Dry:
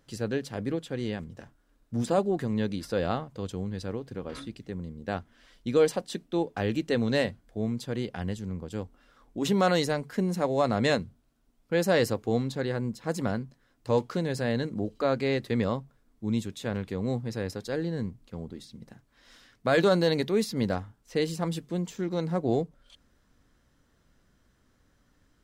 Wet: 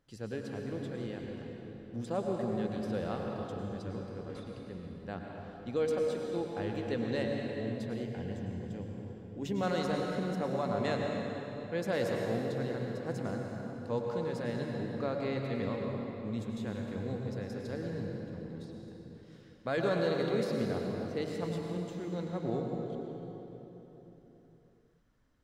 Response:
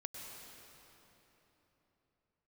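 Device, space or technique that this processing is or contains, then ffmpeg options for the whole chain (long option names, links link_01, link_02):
swimming-pool hall: -filter_complex "[1:a]atrim=start_sample=2205[link_01];[0:a][link_01]afir=irnorm=-1:irlink=0,highshelf=frequency=5500:gain=-7,asettb=1/sr,asplit=3[link_02][link_03][link_04];[link_02]atrim=end=8.034[link_05];[link_03]atrim=start=8.03:end=9.63,asetpts=PTS-STARTPTS,afade=type=in:duration=0.004:curve=qsin,afade=type=out:start_time=1.596:duration=0.004:curve=qsin,equalizer=frequency=125:width_type=o:width=0.33:gain=5,equalizer=frequency=1250:width_type=o:width=0.33:gain=-10,equalizer=frequency=4000:width_type=o:width=0.33:gain=-6,equalizer=frequency=10000:width_type=o:width=0.33:gain=-8[link_06];[link_04]atrim=start=9.626[link_07];[link_05][link_06]acrossfade=duration=0.004:curve1=hsin:curve2=qsin[link_08];[link_08][link_07]acrossfade=duration=0.004:curve1=qsin:curve2=hsin,volume=-4.5dB"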